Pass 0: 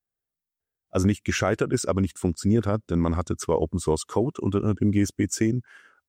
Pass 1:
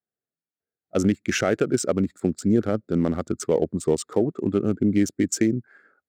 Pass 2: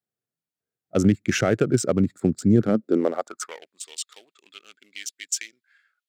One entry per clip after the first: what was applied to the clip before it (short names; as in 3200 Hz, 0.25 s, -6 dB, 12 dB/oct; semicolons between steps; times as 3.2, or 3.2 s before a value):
Wiener smoothing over 15 samples; HPF 170 Hz 12 dB/oct; bell 990 Hz -13.5 dB 0.47 oct; gain +3.5 dB
high-pass sweep 110 Hz -> 3000 Hz, 2.55–3.74